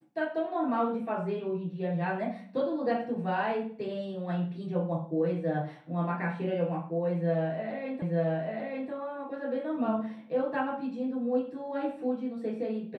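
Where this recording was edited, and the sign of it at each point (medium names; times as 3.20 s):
8.02 s: repeat of the last 0.89 s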